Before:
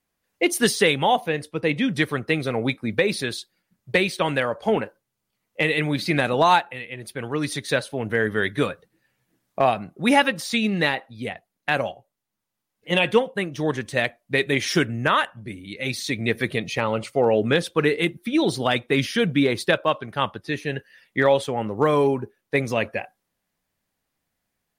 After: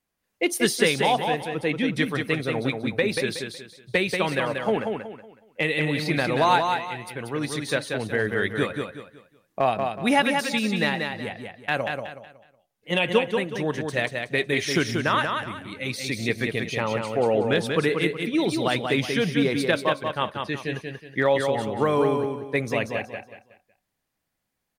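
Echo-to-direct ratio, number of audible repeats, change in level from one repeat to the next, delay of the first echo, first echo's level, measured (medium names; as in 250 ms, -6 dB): -4.5 dB, 4, -10.0 dB, 185 ms, -5.0 dB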